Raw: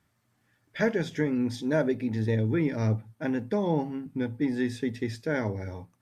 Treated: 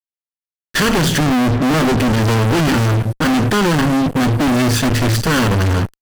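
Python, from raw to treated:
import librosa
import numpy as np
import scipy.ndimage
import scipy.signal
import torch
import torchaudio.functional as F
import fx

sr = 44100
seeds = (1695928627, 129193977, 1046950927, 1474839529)

y = fx.lower_of_two(x, sr, delay_ms=0.65)
y = fx.lowpass(y, sr, hz=1200.0, slope=24, at=(1.19, 1.98))
y = fx.low_shelf(y, sr, hz=68.0, db=10.5, at=(4.83, 5.27))
y = fx.fuzz(y, sr, gain_db=50.0, gate_db=-54.0)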